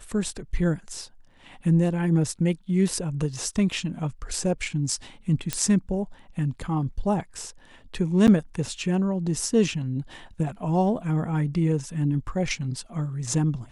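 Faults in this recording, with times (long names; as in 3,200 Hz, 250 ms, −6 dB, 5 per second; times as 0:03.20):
0:05.53: click −9 dBFS
0:08.27–0:08.28: drop-out 8.6 ms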